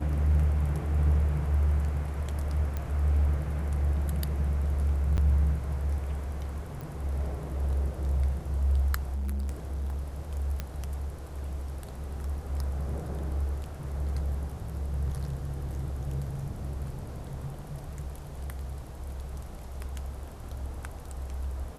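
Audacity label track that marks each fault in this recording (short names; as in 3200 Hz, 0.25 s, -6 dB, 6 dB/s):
2.770000	2.770000	pop -20 dBFS
5.170000	5.180000	gap 9.5 ms
6.810000	6.810000	pop
9.140000	10.040000	clipped -28.5 dBFS
10.600000	10.600000	pop -18 dBFS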